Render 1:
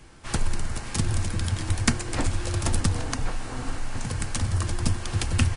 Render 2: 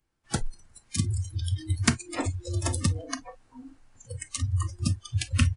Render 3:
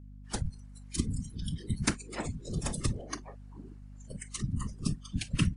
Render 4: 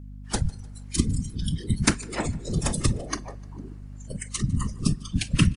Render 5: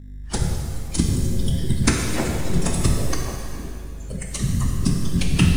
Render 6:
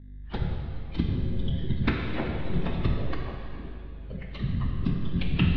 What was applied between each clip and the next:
noise reduction from a noise print of the clip's start 29 dB
random phases in short frames; hum with harmonics 50 Hz, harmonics 5, −43 dBFS −6 dB per octave; level −5.5 dB
repeating echo 151 ms, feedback 48%, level −24 dB; on a send at −23.5 dB: convolution reverb RT60 3.2 s, pre-delay 3 ms; on the sum: level +8 dB
in parallel at −11 dB: decimation without filtering 24×; on the sum: reverb with rising layers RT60 1.9 s, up +7 semitones, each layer −8 dB, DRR 0.5 dB
Butterworth low-pass 3,800 Hz 48 dB per octave; level −6.5 dB

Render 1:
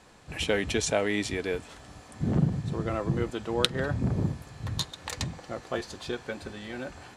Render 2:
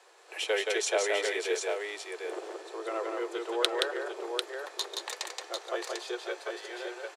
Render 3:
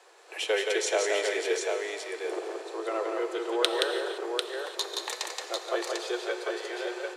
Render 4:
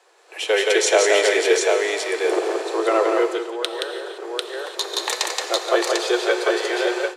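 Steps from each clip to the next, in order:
Butterworth high-pass 350 Hz 96 dB per octave; multi-tap delay 174/746 ms −3.5/−5 dB; level −2 dB
in parallel at +1.5 dB: speech leveller within 4 dB 2 s; on the sum: low-shelf EQ 440 Hz +3.5 dB; reverb whose tail is shaped and stops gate 370 ms flat, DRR 8.5 dB; level −6 dB
automatic gain control gain up to 14 dB; level −1 dB

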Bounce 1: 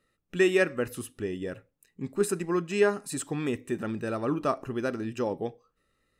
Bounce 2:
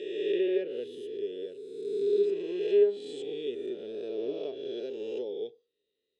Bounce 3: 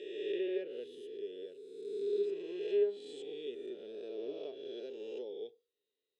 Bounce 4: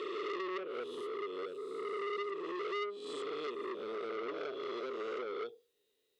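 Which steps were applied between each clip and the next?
peak hold with a rise ahead of every peak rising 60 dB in 1.88 s; treble cut that deepens with the level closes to 2,300 Hz, closed at −15.5 dBFS; pair of resonant band-passes 1,200 Hz, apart 3 octaves
low-shelf EQ 190 Hz −9.5 dB; level −6 dB
downward compressor 3 to 1, threshold −44 dBFS, peak gain reduction 13.5 dB; saturating transformer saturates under 1,600 Hz; level +10 dB

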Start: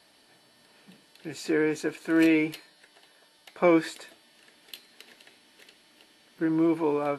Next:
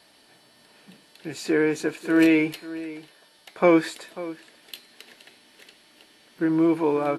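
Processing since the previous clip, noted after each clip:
slap from a distant wall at 93 metres, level −16 dB
level +3.5 dB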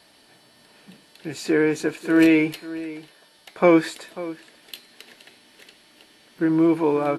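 low-shelf EQ 160 Hz +3.5 dB
level +1.5 dB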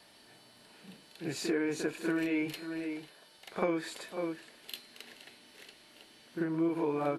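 downward compressor 12 to 1, threshold −23 dBFS, peak gain reduction 13.5 dB
backwards echo 42 ms −6.5 dB
level −5 dB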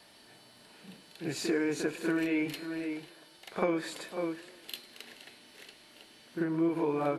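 feedback echo with a swinging delay time 102 ms, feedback 66%, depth 150 cents, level −22 dB
level +1.5 dB

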